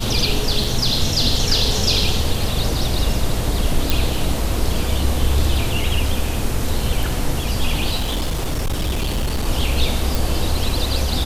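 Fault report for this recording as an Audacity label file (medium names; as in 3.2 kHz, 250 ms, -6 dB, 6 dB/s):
0.640000	0.640000	dropout 4.2 ms
3.900000	3.900000	pop
7.960000	9.460000	clipped -17 dBFS
10.150000	10.150000	pop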